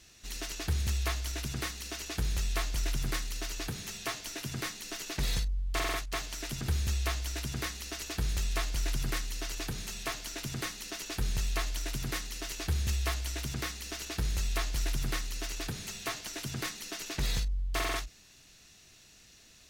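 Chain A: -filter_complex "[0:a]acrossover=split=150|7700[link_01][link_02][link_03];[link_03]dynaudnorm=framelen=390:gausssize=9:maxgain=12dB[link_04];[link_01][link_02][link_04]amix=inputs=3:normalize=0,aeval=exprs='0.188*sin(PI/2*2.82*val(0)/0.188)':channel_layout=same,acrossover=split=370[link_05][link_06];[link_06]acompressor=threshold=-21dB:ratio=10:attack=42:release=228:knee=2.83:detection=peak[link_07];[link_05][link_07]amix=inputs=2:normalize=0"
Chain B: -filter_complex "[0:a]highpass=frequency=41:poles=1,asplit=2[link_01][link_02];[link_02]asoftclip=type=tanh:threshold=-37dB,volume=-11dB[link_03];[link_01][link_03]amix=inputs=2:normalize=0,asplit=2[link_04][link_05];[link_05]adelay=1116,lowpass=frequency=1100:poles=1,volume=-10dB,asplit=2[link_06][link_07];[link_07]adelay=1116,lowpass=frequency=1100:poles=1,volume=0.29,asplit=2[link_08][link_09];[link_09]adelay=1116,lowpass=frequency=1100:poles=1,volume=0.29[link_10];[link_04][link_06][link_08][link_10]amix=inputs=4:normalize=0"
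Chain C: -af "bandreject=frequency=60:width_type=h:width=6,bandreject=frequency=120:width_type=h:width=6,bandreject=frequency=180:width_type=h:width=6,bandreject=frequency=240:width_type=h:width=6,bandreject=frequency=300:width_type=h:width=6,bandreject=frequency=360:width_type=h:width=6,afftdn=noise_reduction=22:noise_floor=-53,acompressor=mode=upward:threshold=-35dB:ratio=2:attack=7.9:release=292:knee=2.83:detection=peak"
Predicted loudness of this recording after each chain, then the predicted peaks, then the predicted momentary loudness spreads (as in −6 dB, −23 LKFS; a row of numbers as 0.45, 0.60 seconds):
−21.5, −34.5, −35.5 LKFS; −8.5, −19.5, −19.0 dBFS; 3, 5, 6 LU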